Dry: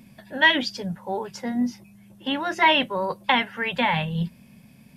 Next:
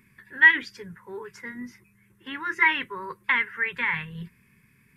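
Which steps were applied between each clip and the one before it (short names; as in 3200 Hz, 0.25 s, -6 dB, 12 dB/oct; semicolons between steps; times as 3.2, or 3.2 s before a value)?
EQ curve 110 Hz 0 dB, 230 Hz -9 dB, 420 Hz +3 dB, 670 Hz -28 dB, 1000 Hz +2 dB, 2000 Hz +11 dB, 3000 Hz -5 dB, 4600 Hz -7 dB, 8700 Hz 0 dB; gain -6.5 dB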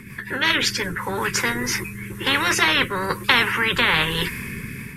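rotary speaker horn 5.5 Hz, later 1.1 Hz, at 1.11; AGC gain up to 10.5 dB; spectral compressor 4:1; gain +1 dB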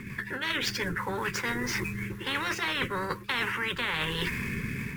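median filter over 5 samples; reverse; compressor 6:1, threshold -28 dBFS, peak gain reduction 15 dB; reverse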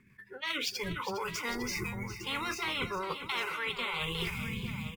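spectral noise reduction 20 dB; tapped delay 0.408/0.854 s -11/-11.5 dB; attack slew limiter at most 560 dB/s; gain -3 dB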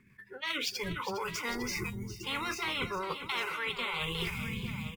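spectral gain 1.9–2.24, 470–2700 Hz -15 dB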